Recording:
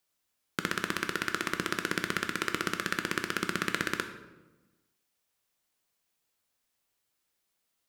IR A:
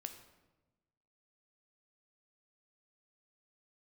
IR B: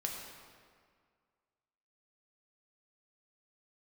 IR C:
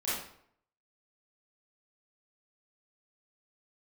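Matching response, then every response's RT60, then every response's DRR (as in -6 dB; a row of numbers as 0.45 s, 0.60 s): A; 1.1 s, 1.9 s, 0.65 s; 6.5 dB, 0.0 dB, -11.5 dB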